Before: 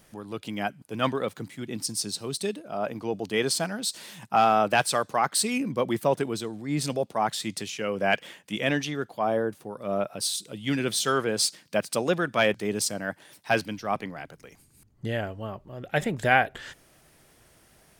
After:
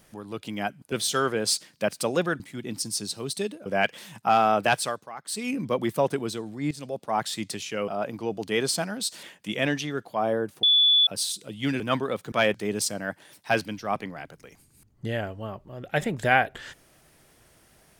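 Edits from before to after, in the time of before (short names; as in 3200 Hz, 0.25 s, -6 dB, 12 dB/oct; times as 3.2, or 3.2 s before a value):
0.92–1.44 swap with 10.84–12.32
2.7–4.05 swap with 7.95–8.27
4.8–5.65 dip -15.5 dB, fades 0.36 s
6.78–7.27 fade in, from -15.5 dB
9.67–10.11 bleep 3450 Hz -15.5 dBFS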